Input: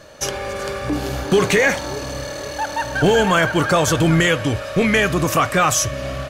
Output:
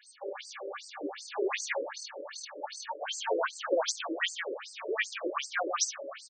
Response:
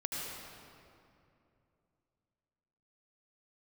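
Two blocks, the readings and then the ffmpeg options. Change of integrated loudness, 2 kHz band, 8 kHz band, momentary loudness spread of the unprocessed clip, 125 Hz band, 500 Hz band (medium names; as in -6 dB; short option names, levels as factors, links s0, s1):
-16.0 dB, -16.0 dB, -12.5 dB, 11 LU, under -40 dB, -15.0 dB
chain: -filter_complex "[0:a]highshelf=f=4800:g=7.5,bandreject=f=6800:w=24,aeval=exprs='val(0)+0.00631*sin(2*PI*8200*n/s)':c=same,asplit=2[s0][s1];[s1]adelay=118,lowpass=f=2100:p=1,volume=0.562,asplit=2[s2][s3];[s3]adelay=118,lowpass=f=2100:p=1,volume=0.32,asplit=2[s4][s5];[s5]adelay=118,lowpass=f=2100:p=1,volume=0.32,asplit=2[s6][s7];[s7]adelay=118,lowpass=f=2100:p=1,volume=0.32[s8];[s0][s2][s4][s6][s8]amix=inputs=5:normalize=0,afftfilt=real='re*between(b*sr/1024,410*pow(6300/410,0.5+0.5*sin(2*PI*2.6*pts/sr))/1.41,410*pow(6300/410,0.5+0.5*sin(2*PI*2.6*pts/sr))*1.41)':imag='im*between(b*sr/1024,410*pow(6300/410,0.5+0.5*sin(2*PI*2.6*pts/sr))/1.41,410*pow(6300/410,0.5+0.5*sin(2*PI*2.6*pts/sr))*1.41)':win_size=1024:overlap=0.75,volume=0.398"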